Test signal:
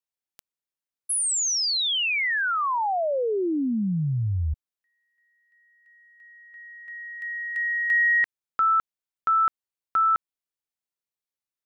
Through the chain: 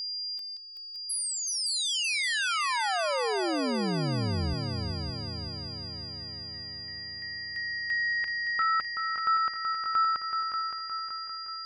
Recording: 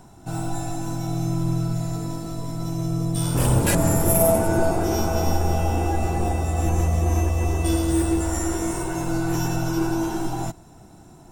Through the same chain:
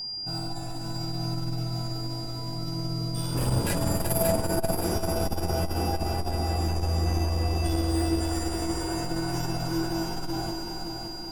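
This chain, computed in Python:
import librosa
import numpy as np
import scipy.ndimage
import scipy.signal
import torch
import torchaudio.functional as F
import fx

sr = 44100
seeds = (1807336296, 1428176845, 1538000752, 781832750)

y = fx.peak_eq(x, sr, hz=7200.0, db=-3.0, octaves=0.71)
y = y + 10.0 ** (-26.0 / 20.0) * np.sin(2.0 * np.pi * 4800.0 * np.arange(len(y)) / sr)
y = fx.echo_heads(y, sr, ms=189, heads='second and third', feedback_pct=63, wet_db=-6.5)
y = fx.transformer_sat(y, sr, knee_hz=91.0)
y = F.gain(torch.from_numpy(y), -6.0).numpy()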